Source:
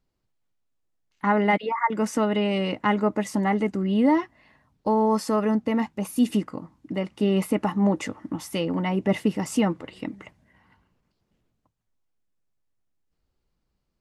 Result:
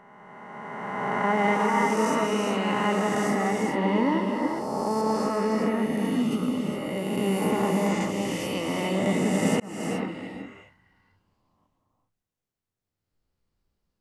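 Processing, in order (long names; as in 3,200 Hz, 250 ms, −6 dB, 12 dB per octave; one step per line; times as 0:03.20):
peak hold with a rise ahead of every peak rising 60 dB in 2.61 s
0:05.01–0:06.31: high-shelf EQ 6,900 Hz −12 dB
reverb whose tail is shaped and stops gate 440 ms rising, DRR 1.5 dB
0:09.60–0:10.09: fade in equal-power
level −7 dB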